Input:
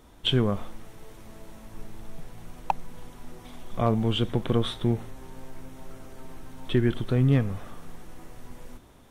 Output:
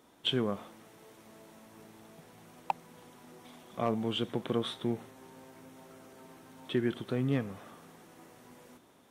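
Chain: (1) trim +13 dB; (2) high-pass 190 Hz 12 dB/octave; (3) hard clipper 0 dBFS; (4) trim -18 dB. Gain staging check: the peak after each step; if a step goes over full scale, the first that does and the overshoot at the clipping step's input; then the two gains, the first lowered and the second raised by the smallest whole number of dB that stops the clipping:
+1.5 dBFS, +3.5 dBFS, 0.0 dBFS, -18.0 dBFS; step 1, 3.5 dB; step 1 +9 dB, step 4 -14 dB

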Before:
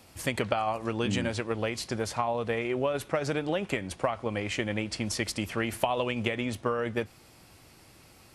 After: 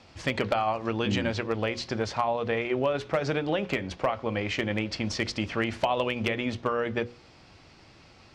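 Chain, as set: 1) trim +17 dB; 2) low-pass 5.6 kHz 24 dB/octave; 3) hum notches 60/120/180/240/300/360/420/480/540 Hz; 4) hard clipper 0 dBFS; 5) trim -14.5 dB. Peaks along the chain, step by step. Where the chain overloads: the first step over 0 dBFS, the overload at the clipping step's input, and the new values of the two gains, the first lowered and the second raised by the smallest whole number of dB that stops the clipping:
+8.5 dBFS, +8.5 dBFS, +7.5 dBFS, 0.0 dBFS, -14.5 dBFS; step 1, 7.5 dB; step 1 +9 dB, step 5 -6.5 dB

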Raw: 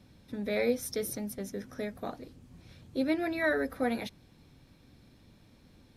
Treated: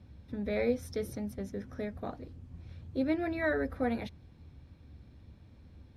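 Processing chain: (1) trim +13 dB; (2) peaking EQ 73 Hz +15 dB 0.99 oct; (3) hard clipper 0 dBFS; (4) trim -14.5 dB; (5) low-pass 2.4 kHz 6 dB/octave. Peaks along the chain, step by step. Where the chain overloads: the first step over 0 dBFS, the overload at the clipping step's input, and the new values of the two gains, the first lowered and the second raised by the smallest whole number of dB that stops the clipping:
-4.0 dBFS, -3.5 dBFS, -3.5 dBFS, -18.0 dBFS, -18.5 dBFS; nothing clips

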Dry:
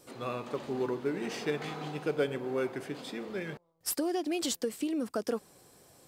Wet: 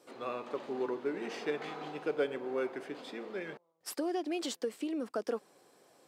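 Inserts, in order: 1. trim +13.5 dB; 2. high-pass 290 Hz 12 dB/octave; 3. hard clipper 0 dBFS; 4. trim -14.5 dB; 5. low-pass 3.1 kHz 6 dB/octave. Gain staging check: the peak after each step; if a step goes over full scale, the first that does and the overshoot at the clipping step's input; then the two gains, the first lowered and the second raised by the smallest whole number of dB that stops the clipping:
-3.5 dBFS, -5.0 dBFS, -5.0 dBFS, -19.5 dBFS, -20.0 dBFS; nothing clips

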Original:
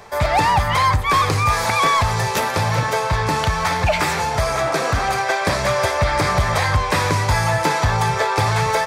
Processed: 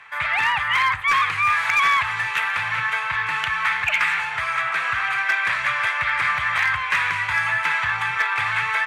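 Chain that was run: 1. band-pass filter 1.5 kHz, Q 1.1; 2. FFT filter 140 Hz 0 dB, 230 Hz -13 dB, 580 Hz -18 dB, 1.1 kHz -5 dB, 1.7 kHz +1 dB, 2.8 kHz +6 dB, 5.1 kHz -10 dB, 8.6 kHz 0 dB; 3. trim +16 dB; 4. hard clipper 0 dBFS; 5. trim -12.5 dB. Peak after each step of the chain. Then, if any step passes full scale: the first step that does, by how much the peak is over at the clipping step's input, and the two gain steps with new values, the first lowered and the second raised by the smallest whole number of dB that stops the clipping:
-9.5 dBFS, -10.0 dBFS, +6.0 dBFS, 0.0 dBFS, -12.5 dBFS; step 3, 6.0 dB; step 3 +10 dB, step 5 -6.5 dB

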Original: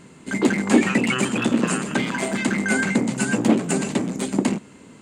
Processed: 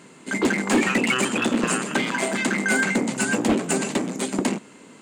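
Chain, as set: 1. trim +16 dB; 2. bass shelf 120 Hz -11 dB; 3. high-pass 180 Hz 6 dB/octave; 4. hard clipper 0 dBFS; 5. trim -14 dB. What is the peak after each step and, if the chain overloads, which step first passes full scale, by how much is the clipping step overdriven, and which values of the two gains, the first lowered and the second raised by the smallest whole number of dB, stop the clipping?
+12.0 dBFS, +10.5 dBFS, +10.0 dBFS, 0.0 dBFS, -14.0 dBFS; step 1, 10.0 dB; step 1 +6 dB, step 5 -4 dB

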